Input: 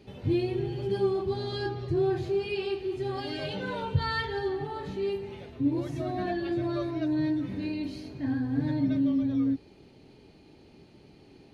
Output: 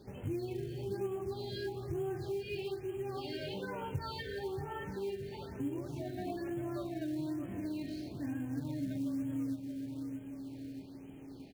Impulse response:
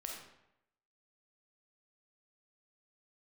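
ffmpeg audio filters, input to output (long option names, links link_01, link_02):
-filter_complex "[0:a]aecho=1:1:629|1258|1887|2516:0.316|0.133|0.0558|0.0234,asplit=2[link_01][link_02];[1:a]atrim=start_sample=2205,afade=type=out:start_time=0.14:duration=0.01,atrim=end_sample=6615[link_03];[link_02][link_03]afir=irnorm=-1:irlink=0,volume=-16dB[link_04];[link_01][link_04]amix=inputs=2:normalize=0,acompressor=threshold=-40dB:ratio=2,acrusher=bits=6:mode=log:mix=0:aa=0.000001,afftfilt=real='re*(1-between(b*sr/1024,990*pow(4800/990,0.5+0.5*sin(2*PI*1.1*pts/sr))/1.41,990*pow(4800/990,0.5+0.5*sin(2*PI*1.1*pts/sr))*1.41))':imag='im*(1-between(b*sr/1024,990*pow(4800/990,0.5+0.5*sin(2*PI*1.1*pts/sr))/1.41,990*pow(4800/990,0.5+0.5*sin(2*PI*1.1*pts/sr))*1.41))':win_size=1024:overlap=0.75,volume=-2dB"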